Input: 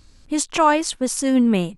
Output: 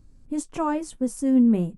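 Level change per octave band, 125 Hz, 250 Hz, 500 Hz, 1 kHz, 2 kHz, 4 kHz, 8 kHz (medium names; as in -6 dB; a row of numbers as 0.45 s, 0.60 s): no reading, -1.5 dB, -8.0 dB, -11.5 dB, -15.5 dB, -20.0 dB, -13.5 dB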